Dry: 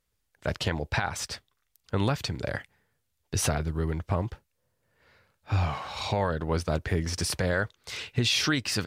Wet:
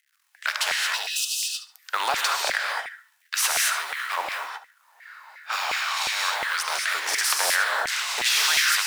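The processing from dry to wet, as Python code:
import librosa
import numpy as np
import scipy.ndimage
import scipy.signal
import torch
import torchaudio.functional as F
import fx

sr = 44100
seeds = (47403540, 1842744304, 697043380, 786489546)

y = fx.law_mismatch(x, sr, coded='A')
y = fx.spec_repair(y, sr, seeds[0], start_s=0.94, length_s=0.66, low_hz=280.0, high_hz=2500.0, source='after')
y = fx.filter_lfo_highpass(y, sr, shape='square', hz=0.36, low_hz=830.0, high_hz=1700.0, q=1.3)
y = fx.echo_thinned(y, sr, ms=72, feedback_pct=25, hz=420.0, wet_db=-17.0)
y = fx.rev_gated(y, sr, seeds[1], gate_ms=250, shape='rising', drr_db=-0.5)
y = fx.filter_lfo_highpass(y, sr, shape='saw_down', hz=2.8, low_hz=710.0, high_hz=2100.0, q=5.6)
y = fx.spectral_comp(y, sr, ratio=2.0)
y = F.gain(torch.from_numpy(y), -3.0).numpy()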